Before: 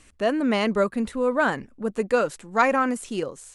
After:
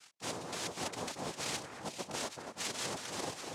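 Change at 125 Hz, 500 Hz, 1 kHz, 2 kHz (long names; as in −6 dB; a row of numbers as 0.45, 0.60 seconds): −10.5, −20.0, −17.0, −16.5 decibels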